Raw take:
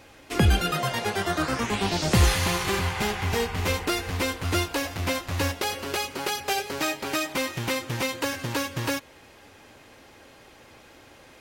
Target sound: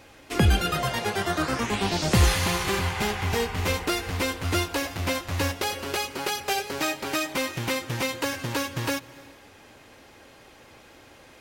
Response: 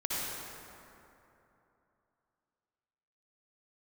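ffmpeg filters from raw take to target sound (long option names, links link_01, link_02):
-filter_complex "[0:a]asplit=2[link_01][link_02];[1:a]atrim=start_sample=2205,afade=type=out:start_time=0.35:duration=0.01,atrim=end_sample=15876,adelay=148[link_03];[link_02][link_03]afir=irnorm=-1:irlink=0,volume=-26dB[link_04];[link_01][link_04]amix=inputs=2:normalize=0"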